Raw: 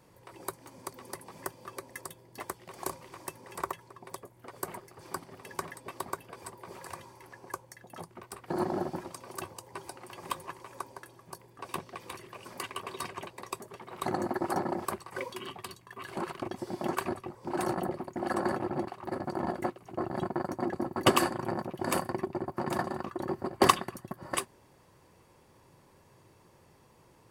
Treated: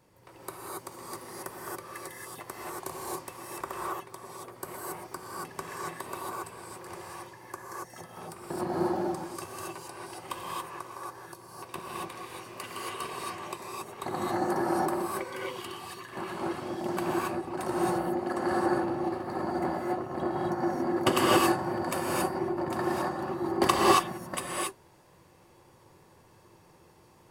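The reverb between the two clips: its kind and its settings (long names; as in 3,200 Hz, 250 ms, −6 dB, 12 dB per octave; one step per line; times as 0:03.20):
reverb whose tail is shaped and stops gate 300 ms rising, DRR −5 dB
level −3.5 dB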